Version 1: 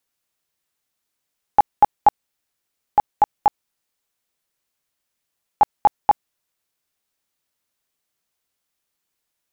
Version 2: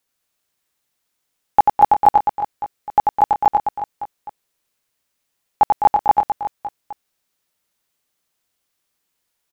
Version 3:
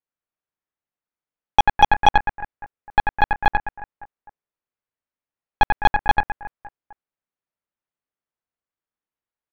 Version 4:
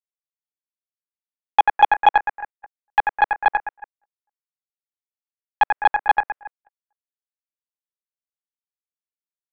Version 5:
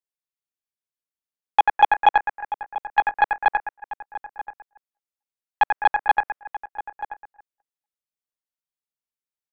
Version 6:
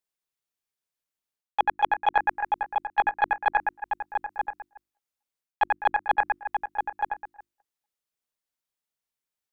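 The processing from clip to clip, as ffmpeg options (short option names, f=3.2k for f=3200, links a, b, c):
-af "aecho=1:1:90|207|359.1|556.8|813.9:0.631|0.398|0.251|0.158|0.1,volume=2dB"
-af "lowpass=1.9k,aeval=exprs='0.75*(cos(1*acos(clip(val(0)/0.75,-1,1)))-cos(1*PI/2))+0.133*(cos(3*acos(clip(val(0)/0.75,-1,1)))-cos(3*PI/2))+0.168*(cos(4*acos(clip(val(0)/0.75,-1,1)))-cos(4*PI/2))+0.00944*(cos(5*acos(clip(val(0)/0.75,-1,1)))-cos(5*PI/2))+0.0299*(cos(7*acos(clip(val(0)/0.75,-1,1)))-cos(7*PI/2))':c=same,volume=-1dB"
-filter_complex "[0:a]agate=range=-33dB:threshold=-32dB:ratio=16:detection=peak,acrossover=split=430 3100:gain=0.0891 1 0.0794[a][b][c];[a][b][c]amix=inputs=3:normalize=0,volume=1dB"
-filter_complex "[0:a]asplit=2[a][b];[b]adelay=932.9,volume=-13dB,highshelf=f=4k:g=-21[c];[a][c]amix=inputs=2:normalize=0,volume=-1.5dB"
-af "bandreject=f=50:t=h:w=6,bandreject=f=100:t=h:w=6,bandreject=f=150:t=h:w=6,bandreject=f=200:t=h:w=6,bandreject=f=250:t=h:w=6,bandreject=f=300:t=h:w=6,bandreject=f=350:t=h:w=6,areverse,acompressor=threshold=-23dB:ratio=12,areverse,volume=4dB"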